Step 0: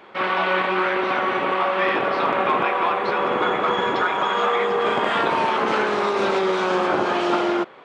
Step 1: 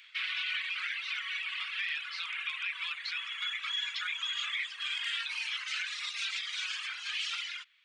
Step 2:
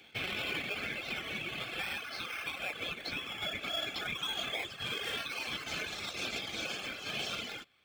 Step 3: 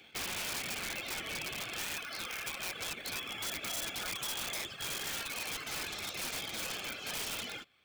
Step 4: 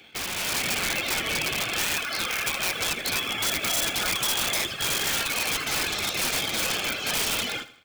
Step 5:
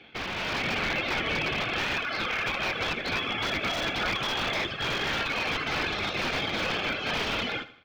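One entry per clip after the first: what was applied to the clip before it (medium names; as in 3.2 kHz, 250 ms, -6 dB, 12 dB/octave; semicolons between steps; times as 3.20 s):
inverse Chebyshev high-pass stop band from 680 Hz, stop band 60 dB; reverb removal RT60 1.7 s; peak limiter -27.5 dBFS, peak gain reduction 8.5 dB; trim +2.5 dB
peaking EQ 7.3 kHz +3 dB; in parallel at -5 dB: decimation with a swept rate 17×, swing 60% 0.34 Hz; on the sum: comb of notches 960 Hz; trim -2.5 dB
integer overflow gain 31.5 dB
level rider gain up to 6 dB; feedback delay 80 ms, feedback 40%, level -16 dB; trim +6 dB
distance through air 260 m; trim +2.5 dB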